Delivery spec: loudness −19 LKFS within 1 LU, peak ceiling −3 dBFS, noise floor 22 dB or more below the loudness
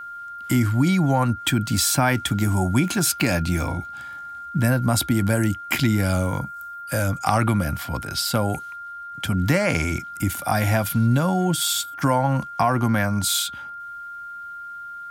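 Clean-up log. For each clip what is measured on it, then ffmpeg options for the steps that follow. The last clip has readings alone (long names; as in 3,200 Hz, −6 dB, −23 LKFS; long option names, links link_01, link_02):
interfering tone 1,400 Hz; level of the tone −33 dBFS; integrated loudness −22.0 LKFS; sample peak −4.5 dBFS; target loudness −19.0 LKFS
→ -af "bandreject=frequency=1400:width=30"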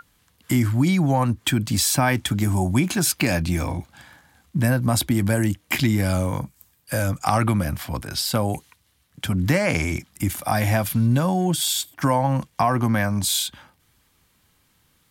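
interfering tone none found; integrated loudness −22.0 LKFS; sample peak −5.0 dBFS; target loudness −19.0 LKFS
→ -af "volume=3dB,alimiter=limit=-3dB:level=0:latency=1"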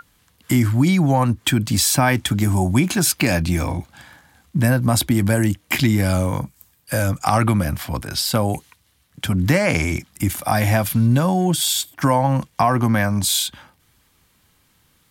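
integrated loudness −19.0 LKFS; sample peak −3.0 dBFS; background noise floor −61 dBFS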